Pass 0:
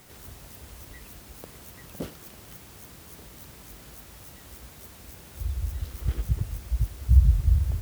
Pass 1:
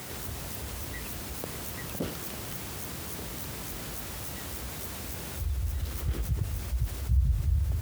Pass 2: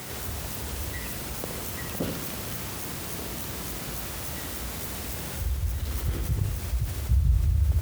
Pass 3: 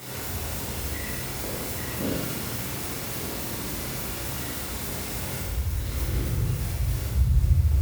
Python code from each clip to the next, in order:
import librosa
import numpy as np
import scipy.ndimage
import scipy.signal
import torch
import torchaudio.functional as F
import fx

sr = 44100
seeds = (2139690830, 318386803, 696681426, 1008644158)

y1 = scipy.signal.sosfilt(scipy.signal.butter(4, 54.0, 'highpass', fs=sr, output='sos'), x)
y1 = fx.env_flatten(y1, sr, amount_pct=50)
y1 = y1 * 10.0 ** (-8.5 / 20.0)
y2 = fx.echo_feedback(y1, sr, ms=70, feedback_pct=59, wet_db=-7.0)
y2 = y2 * 10.0 ** (2.5 / 20.0)
y3 = fx.rev_plate(y2, sr, seeds[0], rt60_s=1.1, hf_ratio=0.85, predelay_ms=0, drr_db=-7.5)
y3 = y3 * 10.0 ** (-5.5 / 20.0)